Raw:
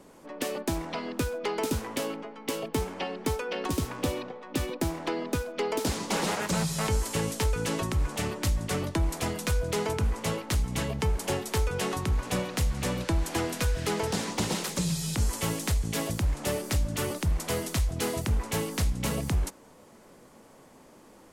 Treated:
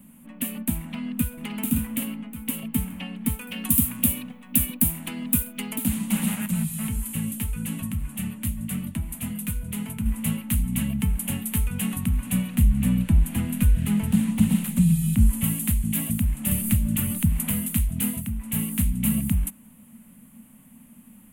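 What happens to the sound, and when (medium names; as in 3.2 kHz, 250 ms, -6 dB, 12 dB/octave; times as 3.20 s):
0.80–1.46 s: echo throw 570 ms, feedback 40%, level -5.5 dB
3.41–5.76 s: treble shelf 4.6 kHz +11.5 dB
6.46–10.06 s: flange 1.7 Hz, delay 5.1 ms, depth 5 ms, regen -58%
12.55–15.44 s: tilt EQ -1.5 dB/octave
16.51–17.53 s: three bands compressed up and down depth 100%
18.05–18.63 s: dip -8.5 dB, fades 0.29 s
whole clip: FFT filter 140 Hz 0 dB, 230 Hz +11 dB, 360 Hz -23 dB, 590 Hz -16 dB, 1.5 kHz -10 dB, 2.8 kHz -1 dB, 5.3 kHz -21 dB, 9.5 kHz +7 dB, 14 kHz +12 dB; trim +3 dB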